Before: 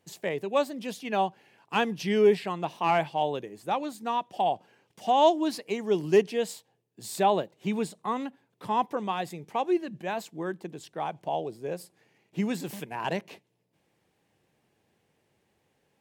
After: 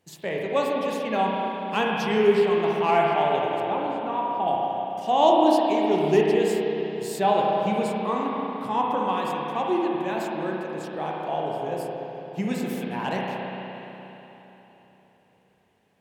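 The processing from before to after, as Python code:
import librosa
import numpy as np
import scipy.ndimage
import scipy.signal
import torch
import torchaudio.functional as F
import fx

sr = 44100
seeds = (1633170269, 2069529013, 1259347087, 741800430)

y = fx.spacing_loss(x, sr, db_at_10k=27, at=(3.6, 4.48))
y = fx.rev_spring(y, sr, rt60_s=3.6, pass_ms=(32, 58), chirp_ms=80, drr_db=-3.0)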